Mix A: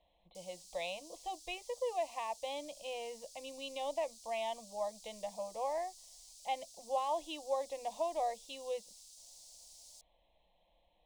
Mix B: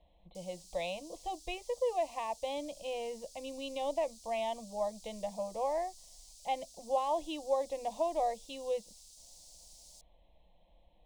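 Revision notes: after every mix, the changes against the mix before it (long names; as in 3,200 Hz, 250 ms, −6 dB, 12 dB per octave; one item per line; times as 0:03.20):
master: add low-shelf EQ 400 Hz +12 dB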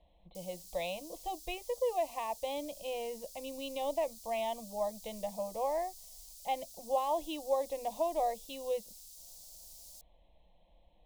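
background: remove Savitzky-Golay smoothing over 9 samples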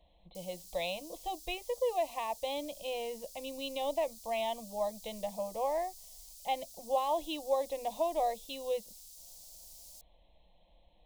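speech: remove high-frequency loss of the air 200 metres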